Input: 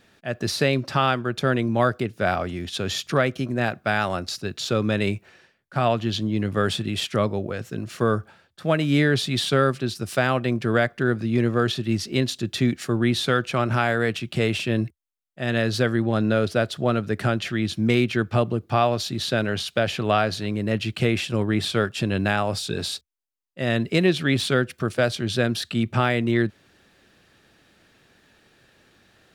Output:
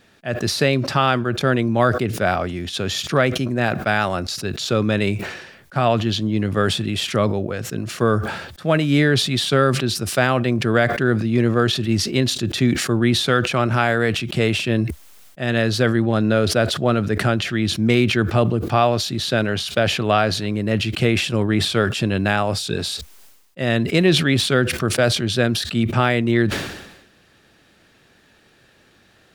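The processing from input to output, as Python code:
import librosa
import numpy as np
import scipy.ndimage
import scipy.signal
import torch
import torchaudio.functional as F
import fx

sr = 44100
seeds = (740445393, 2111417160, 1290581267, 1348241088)

y = fx.sustainer(x, sr, db_per_s=58.0)
y = y * librosa.db_to_amplitude(3.0)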